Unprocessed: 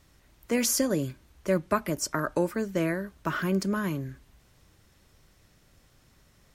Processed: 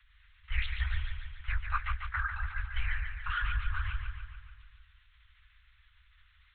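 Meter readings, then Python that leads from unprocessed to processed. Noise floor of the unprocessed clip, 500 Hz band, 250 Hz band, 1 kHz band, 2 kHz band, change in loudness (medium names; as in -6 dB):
-62 dBFS, under -40 dB, under -40 dB, -5.0 dB, +0.5 dB, -7.5 dB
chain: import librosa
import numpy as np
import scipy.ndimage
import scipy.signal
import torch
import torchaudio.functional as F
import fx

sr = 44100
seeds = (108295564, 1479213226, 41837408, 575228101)

y = fx.lpc_vocoder(x, sr, seeds[0], excitation='whisper', order=10)
y = scipy.signal.sosfilt(scipy.signal.cheby2(4, 70, [200.0, 480.0], 'bandstop', fs=sr, output='sos'), y)
y = fx.echo_feedback(y, sr, ms=144, feedback_pct=58, wet_db=-6.5)
y = F.gain(torch.from_numpy(y), 1.0).numpy()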